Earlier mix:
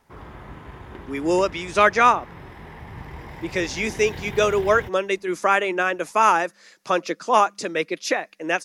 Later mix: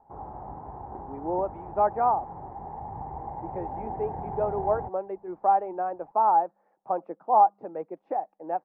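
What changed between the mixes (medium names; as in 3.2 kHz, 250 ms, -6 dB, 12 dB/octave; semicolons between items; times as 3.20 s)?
background +8.0 dB; master: add four-pole ladder low-pass 850 Hz, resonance 80%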